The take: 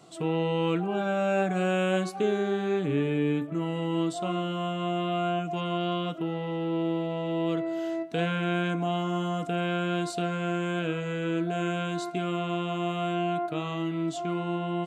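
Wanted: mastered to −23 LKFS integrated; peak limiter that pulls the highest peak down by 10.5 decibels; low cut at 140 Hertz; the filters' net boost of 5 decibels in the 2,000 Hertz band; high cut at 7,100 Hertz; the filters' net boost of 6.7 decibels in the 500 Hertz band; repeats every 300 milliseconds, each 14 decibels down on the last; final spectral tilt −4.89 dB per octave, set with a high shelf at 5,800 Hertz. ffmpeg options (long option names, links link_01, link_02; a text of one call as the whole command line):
ffmpeg -i in.wav -af "highpass=140,lowpass=7100,equalizer=frequency=500:width_type=o:gain=8.5,equalizer=frequency=2000:width_type=o:gain=7.5,highshelf=frequency=5800:gain=-7.5,alimiter=limit=-19.5dB:level=0:latency=1,aecho=1:1:300|600:0.2|0.0399,volume=4.5dB" out.wav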